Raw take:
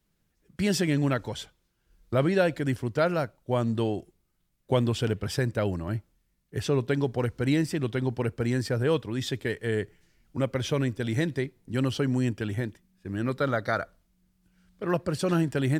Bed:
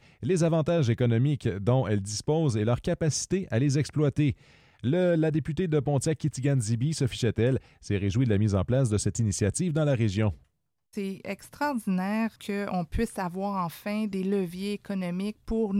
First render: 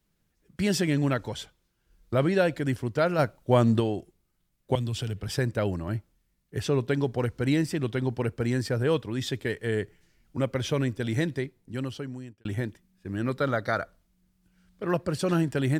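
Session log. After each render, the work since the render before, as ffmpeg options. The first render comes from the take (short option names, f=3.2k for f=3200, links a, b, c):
-filter_complex "[0:a]asplit=3[a][b][c];[a]afade=t=out:st=3.18:d=0.02[d];[b]acontrast=46,afade=t=in:st=3.18:d=0.02,afade=t=out:st=3.79:d=0.02[e];[c]afade=t=in:st=3.79:d=0.02[f];[d][e][f]amix=inputs=3:normalize=0,asettb=1/sr,asplit=3[g][h][i];[g]atrim=end=4.754[j];[h]atrim=start=4.75:end=5.29,asetpts=PTS-STARTPTS,afade=t=in:d=0.004:c=qsin,afade=t=out:st=0.536:d=0.004:c=qsin,acrossover=split=150|3000[k][l][m];[l]acompressor=threshold=-36dB:ratio=6:attack=3.2:release=140:knee=2.83:detection=peak[n];[k][n][m]amix=inputs=3:normalize=0[o];[i]atrim=start=5.286[p];[j][o]acrossfade=d=0.004:c1=hsin:c2=qsin[q];[q][p]acrossfade=d=0.004:c1=qsin:c2=hsin,asplit=2[r][s];[r]atrim=end=12.45,asetpts=PTS-STARTPTS,afade=t=out:st=11.22:d=1.23[t];[s]atrim=start=12.45,asetpts=PTS-STARTPTS,afade=t=in:d=0.004:c=hsin[u];[t][u]concat=n=2:v=0:a=1"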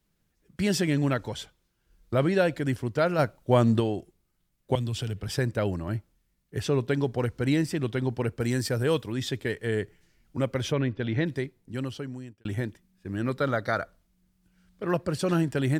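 -filter_complex "[0:a]asettb=1/sr,asplit=3[a][b][c];[a]atrim=end=8.404[d];[b]atrim=start=8.4:end=9.12,asetpts=PTS-STARTPTS,afade=t=in:d=0.004:c=qsin,afade=t=out:st=0.716:d=0.004:c=qsin,aemphasis=mode=production:type=cd[e];[c]atrim=start=9.116[f];[d][e]acrossfade=d=0.004:c1=hsin:c2=qsin[g];[g][f]acrossfade=d=0.004:c1=qsin:c2=hsin,asplit=3[h][i][j];[h]afade=t=out:st=10.71:d=0.02[k];[i]lowpass=f=3.9k:w=0.5412,lowpass=f=3.9k:w=1.3066,afade=t=in:st=10.71:d=0.02,afade=t=out:st=11.25:d=0.02[l];[j]afade=t=in:st=11.25:d=0.02[m];[k][l][m]amix=inputs=3:normalize=0"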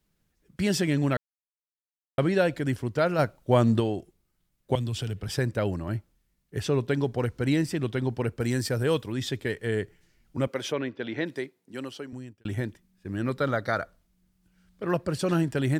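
-filter_complex "[0:a]asettb=1/sr,asplit=3[a][b][c];[a]atrim=end=10.474[d];[b]atrim=start=10.47:end=12.13,asetpts=PTS-STARTPTS,afade=t=in:d=0.004:c=qsin,afade=t=out:st=1.656:d=0.004:c=qsin,highpass=280[e];[c]atrim=start=12.126[f];[d][e]acrossfade=d=0.004:c1=hsin:c2=qsin[g];[g][f]acrossfade=d=0.004:c1=qsin:c2=hsin,asplit=3[h][i][j];[h]atrim=end=1.17,asetpts=PTS-STARTPTS,afade=t=out:st=1.166:d=0.004:c=hsin[k];[i]atrim=start=1.17:end=2.18,asetpts=PTS-STARTPTS,volume=0[l];[j]atrim=start=2.18,asetpts=PTS-STARTPTS,afade=t=in:d=0.004:c=hsin[m];[k][l][m]concat=n=3:v=0:a=1"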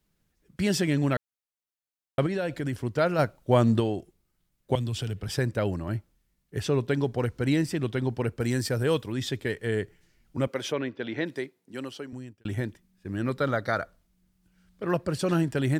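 -filter_complex "[0:a]asettb=1/sr,asplit=3[a][b][c];[a]atrim=end=2.264[d];[b]atrim=start=2.26:end=2.78,asetpts=PTS-STARTPTS,afade=t=in:d=0.004:c=qsin,afade=t=out:st=0.516:d=0.004:c=qsin,acompressor=threshold=-25dB:ratio=6:attack=3.2:release=140:knee=1:detection=peak[e];[c]atrim=start=2.776[f];[d][e]acrossfade=d=0.004:c1=hsin:c2=qsin[g];[g][f]acrossfade=d=0.004:c1=qsin:c2=hsin"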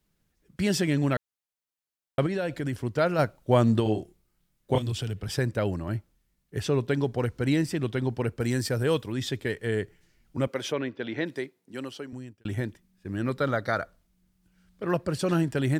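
-filter_complex "[0:a]asettb=1/sr,asplit=3[a][b][c];[a]atrim=end=3.834[d];[b]atrim=start=3.83:end=4.92,asetpts=PTS-STARTPTS,afade=t=in:d=0.004:c=qsin,afade=t=out:st=1.086:d=0.004:c=qsin,asplit=2[e][f];[f]adelay=28,volume=-3dB[g];[e][g]amix=inputs=2:normalize=0,atrim=end_sample=48069[h];[c]atrim=start=4.916[i];[d][h]acrossfade=d=0.004:c1=hsin:c2=qsin[j];[j][i]acrossfade=d=0.004:c1=qsin:c2=hsin"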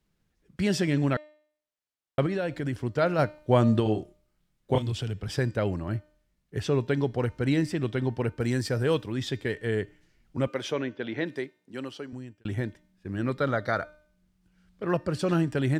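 -af "highshelf=f=8.9k:g=-11,bandreject=f=302.7:t=h:w=4,bandreject=f=605.4:t=h:w=4,bandreject=f=908.1:t=h:w=4,bandreject=f=1.2108k:t=h:w=4,bandreject=f=1.5135k:t=h:w=4,bandreject=f=1.8162k:t=h:w=4,bandreject=f=2.1189k:t=h:w=4,bandreject=f=2.4216k:t=h:w=4,bandreject=f=2.7243k:t=h:w=4,bandreject=f=3.027k:t=h:w=4,bandreject=f=3.3297k:t=h:w=4,bandreject=f=3.6324k:t=h:w=4,bandreject=f=3.9351k:t=h:w=4,bandreject=f=4.2378k:t=h:w=4,bandreject=f=4.5405k:t=h:w=4,bandreject=f=4.8432k:t=h:w=4,bandreject=f=5.1459k:t=h:w=4,bandreject=f=5.4486k:t=h:w=4,bandreject=f=5.7513k:t=h:w=4,bandreject=f=6.054k:t=h:w=4,bandreject=f=6.3567k:t=h:w=4,bandreject=f=6.6594k:t=h:w=4,bandreject=f=6.9621k:t=h:w=4,bandreject=f=7.2648k:t=h:w=4,bandreject=f=7.5675k:t=h:w=4,bandreject=f=7.8702k:t=h:w=4"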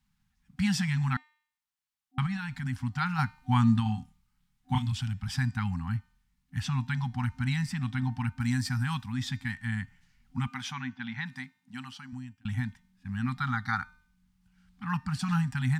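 -af "afftfilt=real='re*(1-between(b*sr/4096,260,750))':imag='im*(1-between(b*sr/4096,260,750))':win_size=4096:overlap=0.75,adynamicequalizer=threshold=0.00178:dfrequency=3000:dqfactor=3.2:tfrequency=3000:tqfactor=3.2:attack=5:release=100:ratio=0.375:range=3.5:mode=cutabove:tftype=bell"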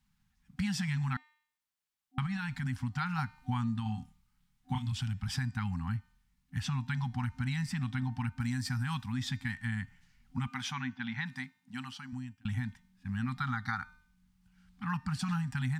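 -af "acompressor=threshold=-30dB:ratio=6"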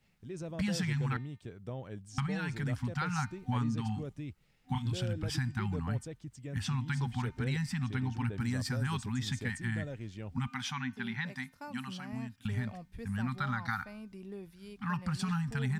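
-filter_complex "[1:a]volume=-17.5dB[a];[0:a][a]amix=inputs=2:normalize=0"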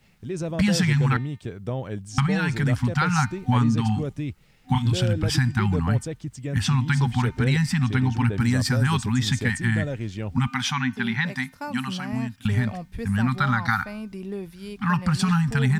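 -af "volume=12dB"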